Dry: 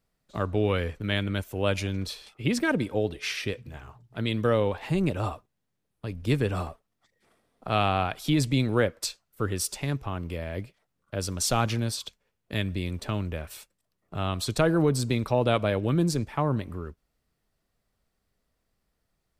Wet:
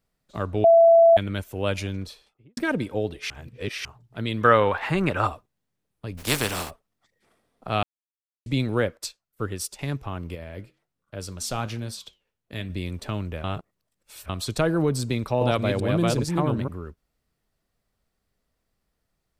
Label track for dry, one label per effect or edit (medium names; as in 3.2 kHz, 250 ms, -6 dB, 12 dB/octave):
0.640000	1.170000	bleep 668 Hz -10.5 dBFS
1.840000	2.570000	studio fade out
3.300000	3.850000	reverse
4.410000	5.270000	peaking EQ 1.4 kHz +15 dB 1.8 oct
6.170000	6.690000	spectral contrast reduction exponent 0.42
7.830000	8.460000	mute
8.970000	9.790000	upward expansion, over -47 dBFS
10.350000	12.700000	flange 1.3 Hz, delay 6.1 ms, depth 5.3 ms, regen -82%
13.440000	14.290000	reverse
15.020000	16.680000	chunks repeated in reverse 391 ms, level -2 dB